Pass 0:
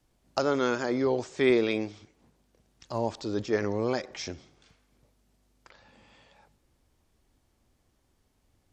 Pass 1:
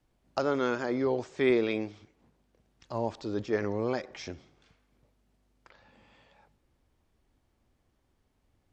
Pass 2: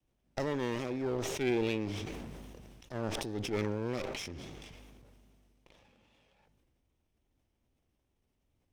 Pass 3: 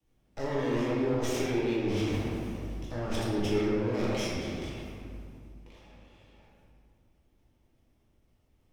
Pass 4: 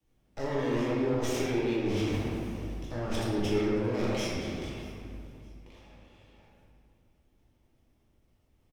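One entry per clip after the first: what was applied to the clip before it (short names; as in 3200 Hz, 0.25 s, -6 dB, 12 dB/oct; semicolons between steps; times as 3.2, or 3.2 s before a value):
tone controls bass 0 dB, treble -7 dB; gain -2 dB
minimum comb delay 0.35 ms; vibrato 2.5 Hz 52 cents; sustainer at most 21 dB/s; gain -6.5 dB
limiter -29.5 dBFS, peak gain reduction 10 dB; reverb RT60 2.1 s, pre-delay 6 ms, DRR -7 dB
feedback echo 0.625 s, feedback 32%, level -22.5 dB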